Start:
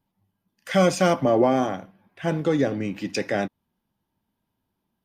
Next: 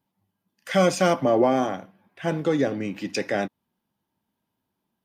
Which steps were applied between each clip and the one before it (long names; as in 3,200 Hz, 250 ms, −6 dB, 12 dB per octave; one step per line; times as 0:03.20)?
high-pass filter 140 Hz 6 dB per octave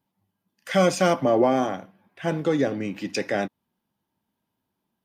no processing that can be heard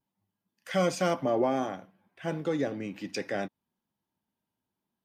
pitch vibrato 0.84 Hz 28 cents
level −7 dB